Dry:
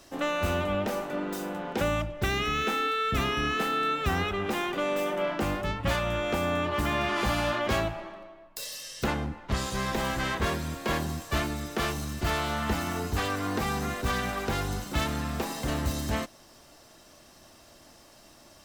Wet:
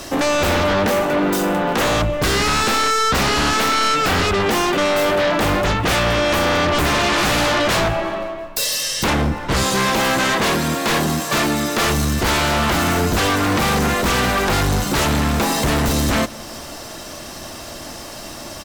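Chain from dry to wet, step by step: 9.63–11.84 s: high-pass 170 Hz 12 dB/octave; in parallel at -1.5 dB: compression, threshold -42 dBFS, peak gain reduction 18.5 dB; on the sum: sine folder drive 12 dB, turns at -14 dBFS; feedback delay 172 ms, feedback 59%, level -22.5 dB

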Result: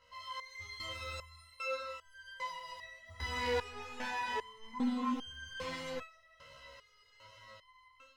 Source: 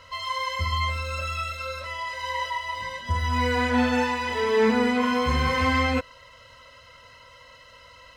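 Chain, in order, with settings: chorus 1.2 Hz, delay 18.5 ms, depth 4.5 ms; level rider gain up to 10.5 dB; saturation -16 dBFS, distortion -10 dB; 4.73–5.14 s: ten-band graphic EQ 250 Hz +10 dB, 500 Hz -4 dB, 1 kHz +9 dB; resonator arpeggio 2.5 Hz 69–1600 Hz; trim -5 dB

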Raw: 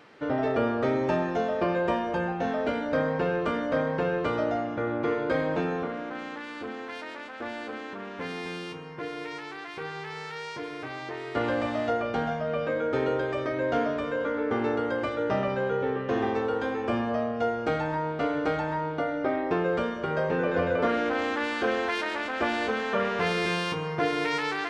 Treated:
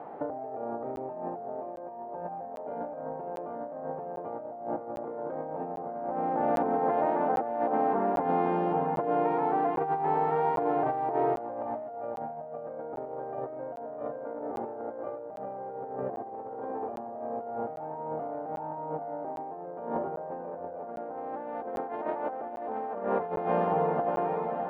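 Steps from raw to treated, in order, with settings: fade out at the end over 2.90 s; resonant low-pass 770 Hz, resonance Q 4.9; peak limiter -19 dBFS, peak gain reduction 10.5 dB; high-pass 120 Hz 12 dB/octave; hum notches 60/120/180/240/300/360/420 Hz; echo that smears into a reverb 591 ms, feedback 66%, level -9.5 dB; reverberation RT60 0.50 s, pre-delay 40 ms, DRR 16 dB; compressor with a negative ratio -32 dBFS, ratio -0.5; crackling interface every 0.80 s, samples 512, zero, from 0.96 s; trim +1 dB

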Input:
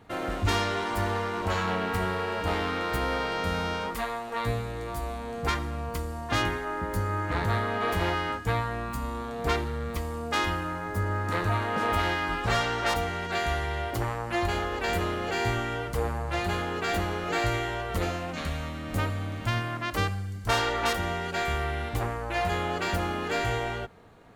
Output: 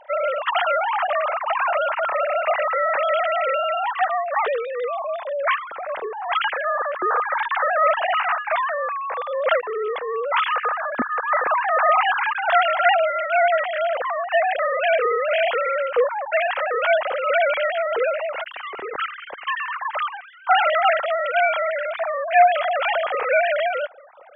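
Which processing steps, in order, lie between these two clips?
formants replaced by sine waves; trim +7.5 dB

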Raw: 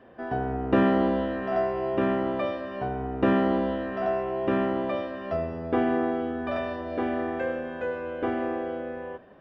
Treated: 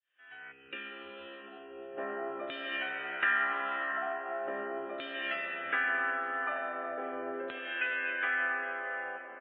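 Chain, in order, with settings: fade-in on the opening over 1.55 s; level rider gain up to 3 dB; LFO band-pass saw down 0.4 Hz 360–3500 Hz; frequency shift +14 Hz; compression 2.5:1, threshold -42 dBFS, peak gain reduction 13 dB; feedback delay 677 ms, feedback 40%, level -21 dB; dynamic bell 790 Hz, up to +3 dB, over -57 dBFS, Q 7.3; 5.82–6.75 s: high-pass 130 Hz 6 dB/octave; high-order bell 2.1 kHz +14.5 dB; reverberation RT60 5.0 s, pre-delay 100 ms, DRR 5.5 dB; 0.52–1.98 s: time-frequency box 560–2300 Hz -17 dB; MP3 16 kbps 11.025 kHz

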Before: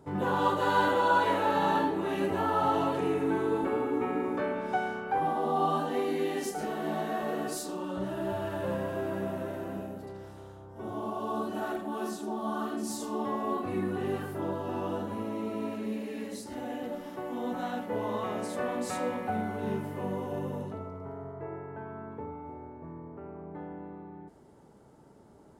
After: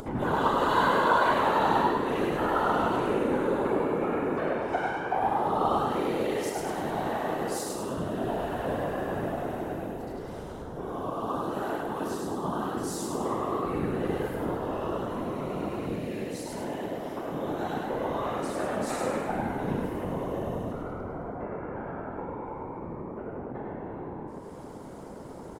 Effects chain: whisper effect; frequency-shifting echo 102 ms, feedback 51%, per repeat +45 Hz, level -3 dB; upward compressor, threshold -30 dBFS

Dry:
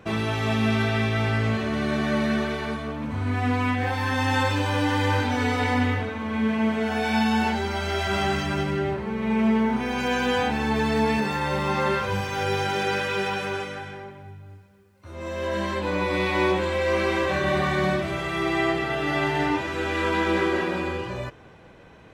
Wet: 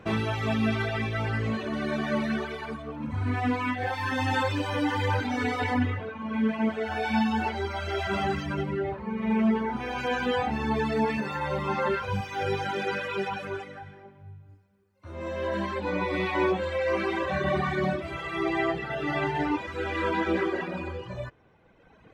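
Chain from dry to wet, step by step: reverb removal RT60 1.9 s; treble shelf 4.5 kHz -6.5 dB, from 5.77 s -11.5 dB

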